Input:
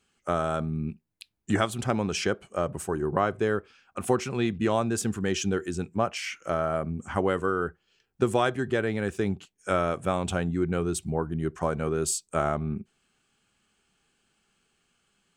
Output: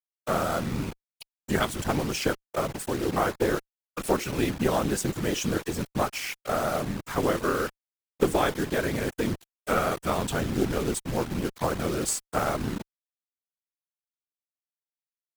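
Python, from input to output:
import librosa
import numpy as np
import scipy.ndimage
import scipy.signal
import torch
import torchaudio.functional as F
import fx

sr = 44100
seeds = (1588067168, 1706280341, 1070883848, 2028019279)

y = fx.quant_dither(x, sr, seeds[0], bits=6, dither='none')
y = fx.whisperise(y, sr, seeds[1])
y = fx.cheby_harmonics(y, sr, harmonics=(4,), levels_db=(-19,), full_scale_db=-9.0)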